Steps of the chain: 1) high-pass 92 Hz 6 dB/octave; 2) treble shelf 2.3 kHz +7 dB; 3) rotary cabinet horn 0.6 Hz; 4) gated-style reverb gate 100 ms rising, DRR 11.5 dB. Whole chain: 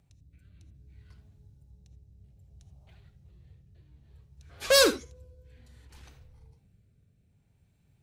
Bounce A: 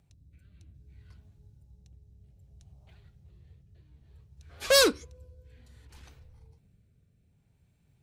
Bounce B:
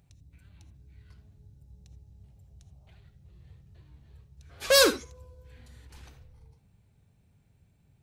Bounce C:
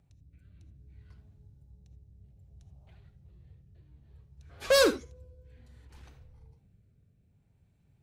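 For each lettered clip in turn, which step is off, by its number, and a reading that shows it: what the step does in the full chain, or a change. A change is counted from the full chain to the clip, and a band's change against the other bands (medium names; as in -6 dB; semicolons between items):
4, momentary loudness spread change -8 LU; 3, crest factor change -3.0 dB; 2, 8 kHz band -5.5 dB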